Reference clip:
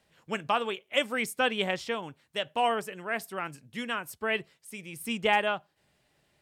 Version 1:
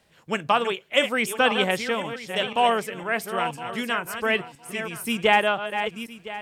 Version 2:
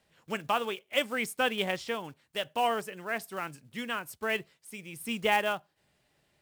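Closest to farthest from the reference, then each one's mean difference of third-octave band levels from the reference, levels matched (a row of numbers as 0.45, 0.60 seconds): 2, 1; 3.0, 4.5 decibels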